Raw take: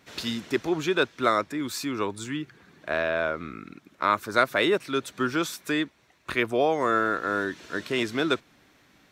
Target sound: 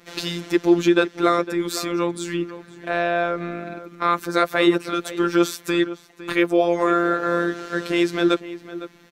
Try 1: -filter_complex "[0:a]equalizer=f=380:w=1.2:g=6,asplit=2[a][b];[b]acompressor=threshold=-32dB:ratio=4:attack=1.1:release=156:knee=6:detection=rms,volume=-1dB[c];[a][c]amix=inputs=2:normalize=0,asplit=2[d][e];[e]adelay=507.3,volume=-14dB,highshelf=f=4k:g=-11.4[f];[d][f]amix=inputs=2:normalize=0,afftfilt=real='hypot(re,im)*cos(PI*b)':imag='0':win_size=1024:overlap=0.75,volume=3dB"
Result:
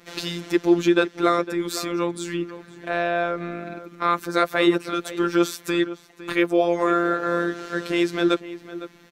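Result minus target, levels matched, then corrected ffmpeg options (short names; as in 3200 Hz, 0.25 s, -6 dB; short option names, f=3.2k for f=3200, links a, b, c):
compressor: peak gain reduction +7 dB
-filter_complex "[0:a]equalizer=f=380:w=1.2:g=6,asplit=2[a][b];[b]acompressor=threshold=-22.5dB:ratio=4:attack=1.1:release=156:knee=6:detection=rms,volume=-1dB[c];[a][c]amix=inputs=2:normalize=0,asplit=2[d][e];[e]adelay=507.3,volume=-14dB,highshelf=f=4k:g=-11.4[f];[d][f]amix=inputs=2:normalize=0,afftfilt=real='hypot(re,im)*cos(PI*b)':imag='0':win_size=1024:overlap=0.75,volume=3dB"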